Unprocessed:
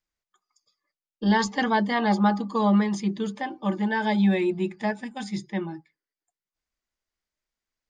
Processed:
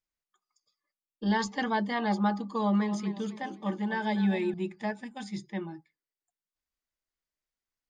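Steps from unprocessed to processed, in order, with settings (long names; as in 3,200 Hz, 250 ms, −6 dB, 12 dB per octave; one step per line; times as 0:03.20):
0:02.46–0:04.54: feedback echo with a swinging delay time 251 ms, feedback 34%, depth 68 cents, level −12 dB
level −6 dB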